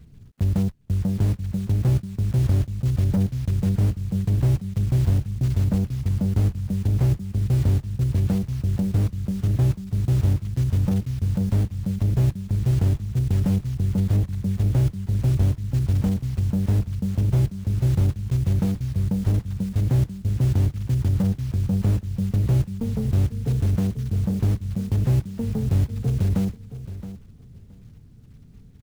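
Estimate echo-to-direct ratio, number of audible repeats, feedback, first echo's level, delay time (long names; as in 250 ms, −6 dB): −13.5 dB, 2, 17%, −13.5 dB, 671 ms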